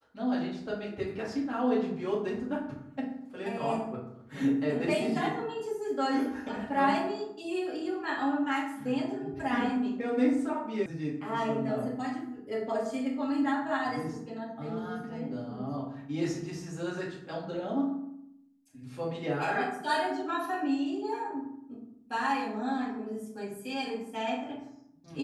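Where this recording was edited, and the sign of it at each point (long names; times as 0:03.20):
0:10.86: cut off before it has died away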